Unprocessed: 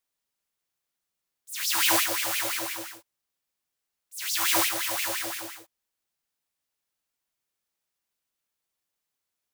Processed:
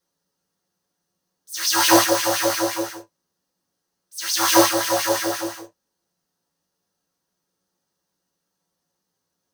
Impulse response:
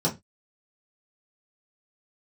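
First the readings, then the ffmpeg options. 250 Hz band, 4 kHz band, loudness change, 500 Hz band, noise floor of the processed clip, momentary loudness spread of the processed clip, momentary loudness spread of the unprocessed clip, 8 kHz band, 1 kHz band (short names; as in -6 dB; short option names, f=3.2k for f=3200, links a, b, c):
+16.0 dB, +6.0 dB, +6.5 dB, +16.0 dB, -79 dBFS, 16 LU, 16 LU, +6.5 dB, +11.0 dB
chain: -filter_complex "[1:a]atrim=start_sample=2205,afade=t=out:st=0.14:d=0.01,atrim=end_sample=6615,asetrate=48510,aresample=44100[a];[0:a][a]afir=irnorm=-1:irlink=0,volume=-1dB"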